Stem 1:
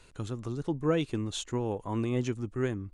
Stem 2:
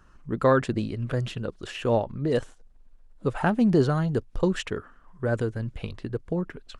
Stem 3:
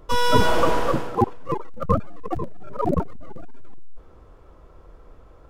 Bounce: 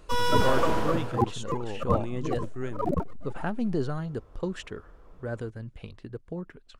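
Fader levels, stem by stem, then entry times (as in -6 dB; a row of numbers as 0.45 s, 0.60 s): -4.5 dB, -8.0 dB, -5.5 dB; 0.00 s, 0.00 s, 0.00 s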